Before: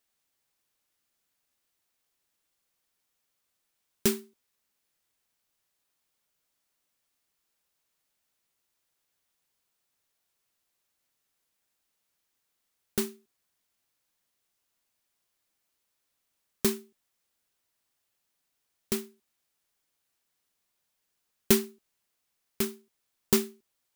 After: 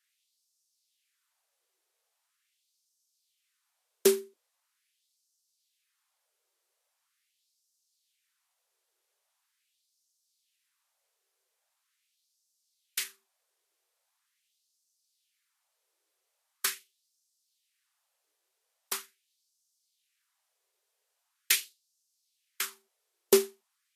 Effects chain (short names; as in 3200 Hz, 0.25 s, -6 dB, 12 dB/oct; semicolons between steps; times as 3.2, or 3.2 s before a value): LFO high-pass sine 0.42 Hz 390–5700 Hz; Vorbis 32 kbps 48000 Hz